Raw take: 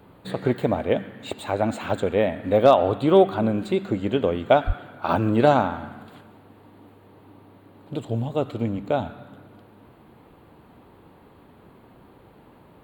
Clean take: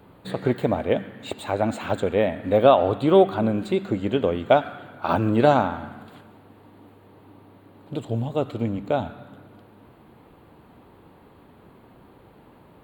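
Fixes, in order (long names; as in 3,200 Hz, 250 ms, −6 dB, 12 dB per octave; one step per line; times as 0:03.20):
clipped peaks rebuilt −4.5 dBFS
0:04.66–0:04.78: high-pass filter 140 Hz 24 dB per octave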